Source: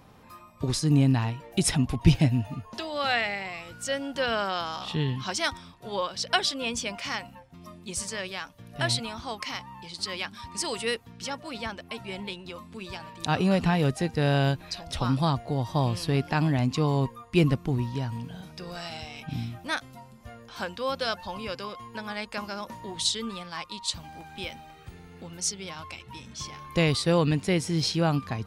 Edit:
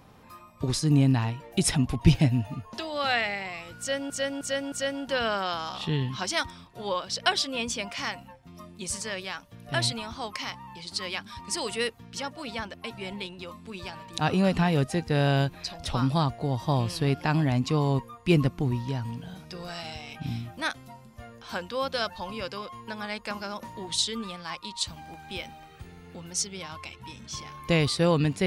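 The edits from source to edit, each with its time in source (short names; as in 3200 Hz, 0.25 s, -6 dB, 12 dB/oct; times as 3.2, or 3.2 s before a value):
3.79–4.1 loop, 4 plays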